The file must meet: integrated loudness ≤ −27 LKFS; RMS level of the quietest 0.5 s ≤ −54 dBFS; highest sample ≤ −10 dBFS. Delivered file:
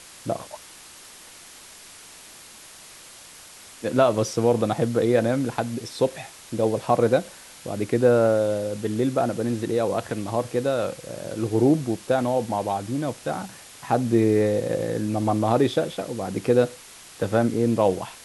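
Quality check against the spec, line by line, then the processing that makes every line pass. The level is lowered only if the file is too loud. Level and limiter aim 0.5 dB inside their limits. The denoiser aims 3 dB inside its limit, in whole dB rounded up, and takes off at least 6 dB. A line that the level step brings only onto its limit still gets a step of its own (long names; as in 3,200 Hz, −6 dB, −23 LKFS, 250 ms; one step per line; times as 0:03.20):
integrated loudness −23.5 LKFS: out of spec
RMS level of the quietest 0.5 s −46 dBFS: out of spec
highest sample −6.5 dBFS: out of spec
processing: broadband denoise 7 dB, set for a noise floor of −46 dBFS
level −4 dB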